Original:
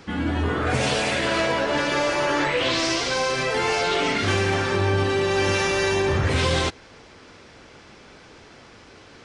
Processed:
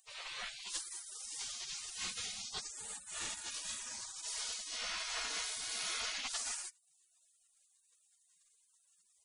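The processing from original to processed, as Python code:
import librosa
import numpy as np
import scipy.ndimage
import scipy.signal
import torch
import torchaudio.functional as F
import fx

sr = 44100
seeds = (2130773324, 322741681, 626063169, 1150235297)

y = fx.spec_gate(x, sr, threshold_db=-30, keep='weak')
y = F.gain(torch.from_numpy(y), 1.5).numpy()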